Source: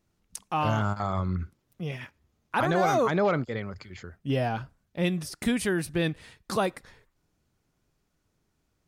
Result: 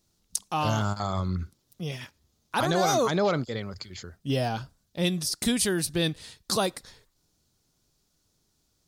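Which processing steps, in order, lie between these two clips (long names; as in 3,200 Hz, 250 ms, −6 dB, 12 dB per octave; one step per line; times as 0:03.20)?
high shelf with overshoot 3,100 Hz +9 dB, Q 1.5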